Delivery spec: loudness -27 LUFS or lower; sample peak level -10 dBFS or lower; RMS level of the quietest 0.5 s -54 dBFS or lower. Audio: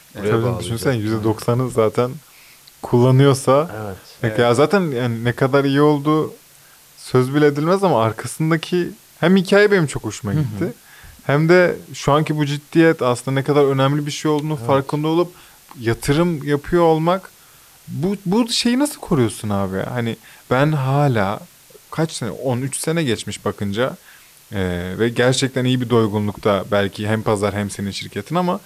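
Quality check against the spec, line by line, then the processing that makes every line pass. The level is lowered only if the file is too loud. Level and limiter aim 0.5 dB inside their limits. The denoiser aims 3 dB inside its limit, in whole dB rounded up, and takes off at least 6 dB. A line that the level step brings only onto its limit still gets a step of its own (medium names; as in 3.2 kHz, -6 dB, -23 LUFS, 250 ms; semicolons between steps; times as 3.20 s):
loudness -18.5 LUFS: fail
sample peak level -4.0 dBFS: fail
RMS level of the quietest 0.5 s -48 dBFS: fail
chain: trim -9 dB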